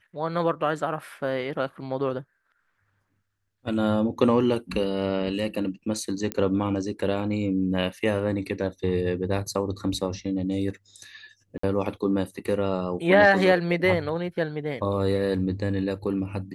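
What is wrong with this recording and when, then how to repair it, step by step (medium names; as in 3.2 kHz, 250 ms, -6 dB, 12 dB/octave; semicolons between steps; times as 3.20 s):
6.32 s: pop -12 dBFS
11.58–11.63 s: dropout 54 ms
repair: de-click; interpolate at 11.58 s, 54 ms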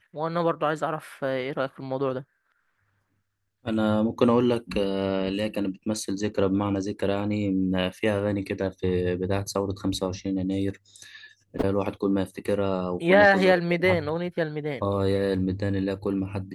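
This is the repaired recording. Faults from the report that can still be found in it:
nothing left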